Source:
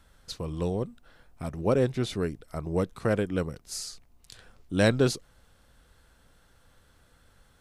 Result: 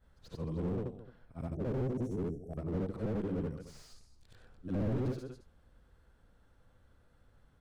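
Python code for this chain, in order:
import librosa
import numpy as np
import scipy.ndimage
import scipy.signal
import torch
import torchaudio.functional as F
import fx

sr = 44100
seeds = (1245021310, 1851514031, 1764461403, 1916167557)

y = fx.frame_reverse(x, sr, frame_ms=188.0)
y = fx.high_shelf(y, sr, hz=2600.0, db=-11.5)
y = y + 10.0 ** (-17.0 / 20.0) * np.pad(y, (int(219 * sr / 1000.0), 0))[:len(y)]
y = fx.spec_box(y, sr, start_s=1.55, length_s=1.02, low_hz=820.0, high_hz=5400.0, gain_db=-29)
y = fx.low_shelf(y, sr, hz=440.0, db=4.0)
y = fx.slew_limit(y, sr, full_power_hz=11.0)
y = F.gain(torch.from_numpy(y), -3.5).numpy()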